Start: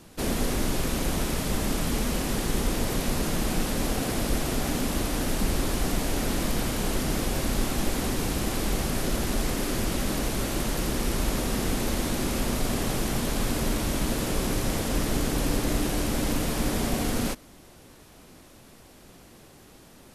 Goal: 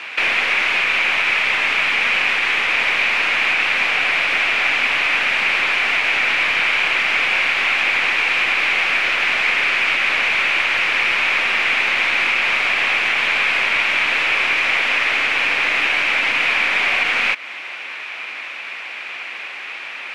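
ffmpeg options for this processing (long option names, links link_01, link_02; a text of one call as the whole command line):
ffmpeg -i in.wav -af "highpass=1200,aeval=exprs='clip(val(0),-1,0.0158)':channel_layout=same,acompressor=threshold=-41dB:ratio=6,lowpass=frequency=2400:width_type=q:width=5.1,alimiter=level_in=29dB:limit=-1dB:release=50:level=0:latency=1,volume=-6dB" out.wav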